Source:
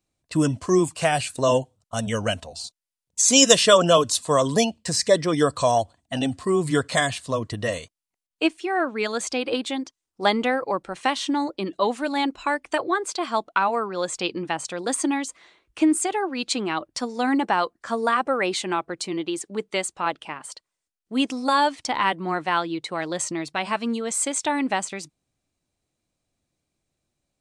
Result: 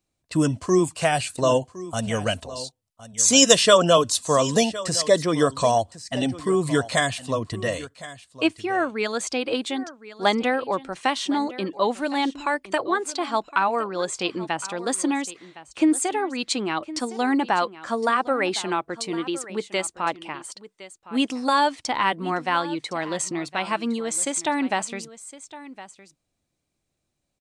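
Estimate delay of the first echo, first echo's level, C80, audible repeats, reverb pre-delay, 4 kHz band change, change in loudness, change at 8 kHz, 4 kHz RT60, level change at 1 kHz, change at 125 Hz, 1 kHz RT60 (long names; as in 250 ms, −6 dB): 1,062 ms, −16.5 dB, no reverb audible, 1, no reverb audible, 0.0 dB, 0.0 dB, 0.0 dB, no reverb audible, 0.0 dB, 0.0 dB, no reverb audible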